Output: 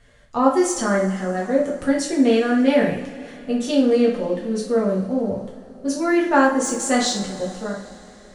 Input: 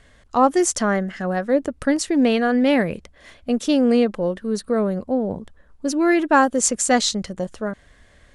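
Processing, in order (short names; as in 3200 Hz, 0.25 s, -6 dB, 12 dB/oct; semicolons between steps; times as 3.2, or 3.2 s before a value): de-esser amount 35%; two-slope reverb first 0.48 s, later 3.8 s, from -20 dB, DRR -4.5 dB; gain -6.5 dB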